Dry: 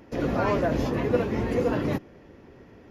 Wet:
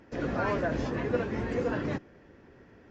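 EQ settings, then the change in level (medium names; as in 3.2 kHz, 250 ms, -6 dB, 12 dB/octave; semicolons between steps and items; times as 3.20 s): brick-wall FIR low-pass 9 kHz; peaking EQ 1.6 kHz +6.5 dB 0.47 oct; -5.5 dB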